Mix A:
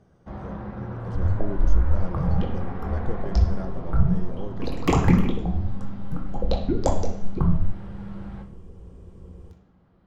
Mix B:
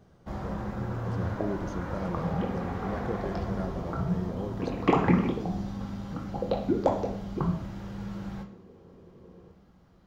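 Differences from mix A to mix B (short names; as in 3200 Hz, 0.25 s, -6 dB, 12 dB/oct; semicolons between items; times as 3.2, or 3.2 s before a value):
first sound: remove air absorption 260 m; second sound: add BPF 210–2500 Hz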